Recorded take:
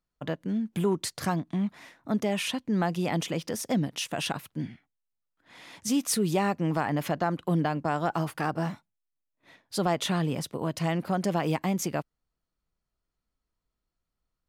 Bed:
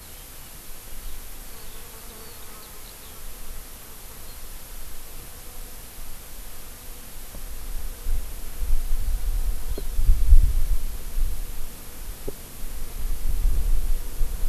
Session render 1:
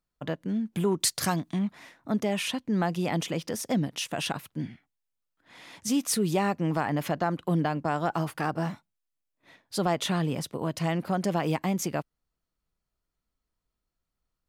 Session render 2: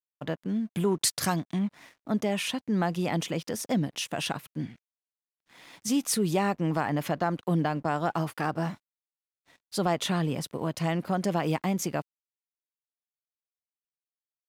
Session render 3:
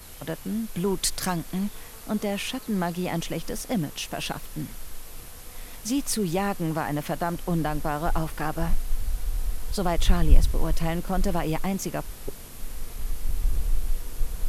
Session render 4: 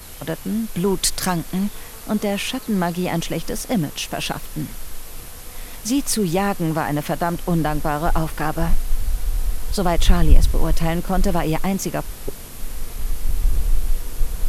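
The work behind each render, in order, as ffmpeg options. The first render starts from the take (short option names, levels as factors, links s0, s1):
-filter_complex "[0:a]asettb=1/sr,asplit=3[s0][s1][s2];[s0]atrim=end=1.004[s3];[s1]atrim=start=1:end=1.59,asetpts=PTS-STARTPTS,afade=t=in:d=0.004:c=qsin,afade=t=out:st=0.586:d=0.004:c=qsin,highshelf=f=2900:g=10.5[s4];[s2]atrim=start=1.586[s5];[s3][s4]acrossfade=d=0.004:c1=hsin:c2=qsin[s6];[s6][s5]acrossfade=d=0.004:c1=qsin:c2=hsin"
-af "aeval=exprs='sgn(val(0))*max(abs(val(0))-0.00133,0)':c=same"
-filter_complex "[1:a]volume=0.75[s0];[0:a][s0]amix=inputs=2:normalize=0"
-af "volume=2,alimiter=limit=0.891:level=0:latency=1"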